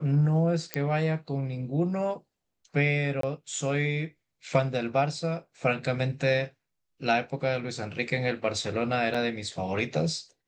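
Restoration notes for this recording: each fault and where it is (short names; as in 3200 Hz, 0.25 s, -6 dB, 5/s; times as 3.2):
0.74 pop -12 dBFS
3.21–3.23 gap 23 ms
9.14 gap 5 ms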